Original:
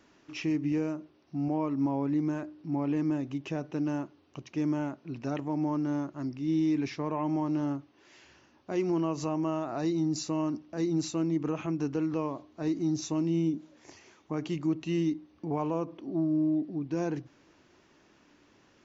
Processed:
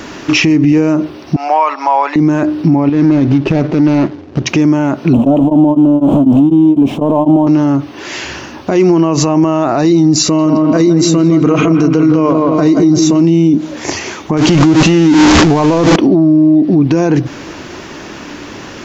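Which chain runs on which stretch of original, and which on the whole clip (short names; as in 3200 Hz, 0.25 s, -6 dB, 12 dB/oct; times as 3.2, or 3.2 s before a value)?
1.36–2.16 HPF 770 Hz 24 dB/oct + air absorption 100 m
2.89–4.46 median filter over 41 samples + steep low-pass 6100 Hz + compressor 12:1, threshold -36 dBFS
5.13–7.47 zero-crossing step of -37 dBFS + EQ curve 130 Hz 0 dB, 260 Hz +10 dB, 370 Hz -1 dB, 600 Hz +8 dB, 1000 Hz 0 dB, 1900 Hz -26 dB, 3100 Hz -6 dB, 4800 Hz -27 dB, 7300 Hz -15 dB, 11000 Hz -21 dB + beating tremolo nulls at 4 Hz
10.22–13.2 notch comb 860 Hz + dark delay 0.166 s, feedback 45%, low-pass 2000 Hz, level -6 dB
14.37–15.96 zero-crossing step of -33.5 dBFS + compressor 2.5:1, threshold -33 dBFS + careless resampling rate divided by 3×, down none, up filtered
whole clip: compressor, threshold -35 dBFS; maximiser +35 dB; gain -1 dB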